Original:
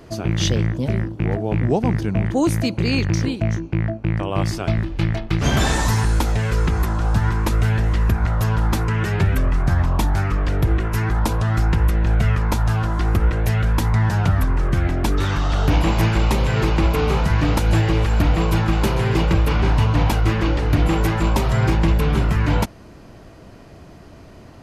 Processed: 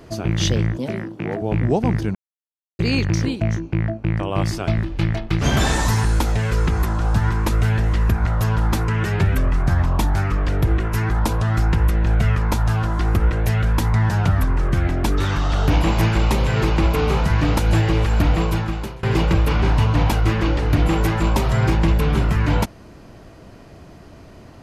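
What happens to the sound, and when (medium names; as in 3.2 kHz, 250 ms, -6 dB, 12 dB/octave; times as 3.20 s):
0.77–1.42 s: high-pass 200 Hz
2.15–2.79 s: mute
18.36–19.03 s: fade out, to -24 dB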